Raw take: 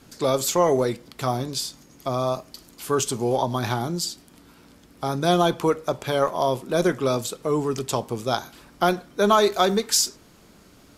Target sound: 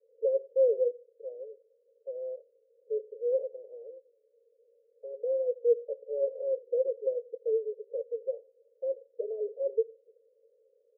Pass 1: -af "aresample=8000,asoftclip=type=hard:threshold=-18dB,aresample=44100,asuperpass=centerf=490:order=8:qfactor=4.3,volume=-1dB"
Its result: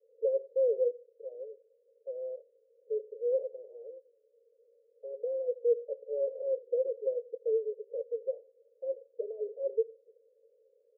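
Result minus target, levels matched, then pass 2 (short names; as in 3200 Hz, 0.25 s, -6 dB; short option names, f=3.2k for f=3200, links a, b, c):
hard clip: distortion +35 dB
-af "aresample=8000,asoftclip=type=hard:threshold=-8dB,aresample=44100,asuperpass=centerf=490:order=8:qfactor=4.3,volume=-1dB"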